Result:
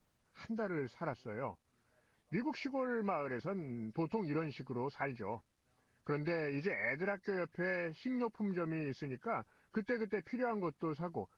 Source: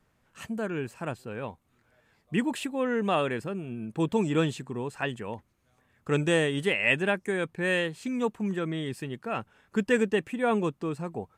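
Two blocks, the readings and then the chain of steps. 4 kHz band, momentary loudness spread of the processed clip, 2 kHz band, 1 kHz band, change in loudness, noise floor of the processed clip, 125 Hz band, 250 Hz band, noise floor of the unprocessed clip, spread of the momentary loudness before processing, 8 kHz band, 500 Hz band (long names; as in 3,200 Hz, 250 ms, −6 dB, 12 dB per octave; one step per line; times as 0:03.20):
−20.0 dB, 7 LU, −11.0 dB, −8.0 dB, −10.5 dB, −78 dBFS, −10.0 dB, −10.0 dB, −70 dBFS, 12 LU, below −25 dB, −10.0 dB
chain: hearing-aid frequency compression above 1,500 Hz 1.5 to 1
dynamic equaliser 940 Hz, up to +5 dB, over −41 dBFS, Q 0.81
downward compressor 12 to 1, threshold −26 dBFS, peak gain reduction 10.5 dB
bit-depth reduction 12 bits, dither none
level −6.5 dB
Opus 24 kbit/s 48,000 Hz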